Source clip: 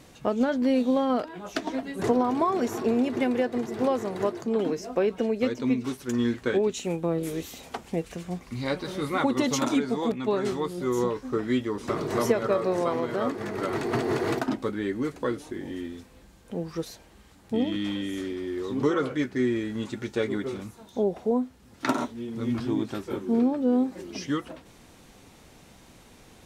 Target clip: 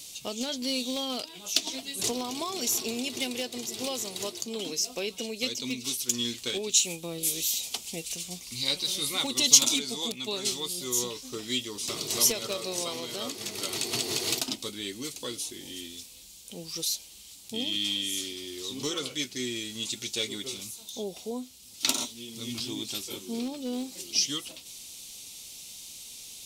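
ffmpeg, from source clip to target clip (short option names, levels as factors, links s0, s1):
-af "aeval=exprs='clip(val(0),-1,0.133)':c=same,aexciter=amount=15.4:drive=5.5:freq=2600,volume=0.299"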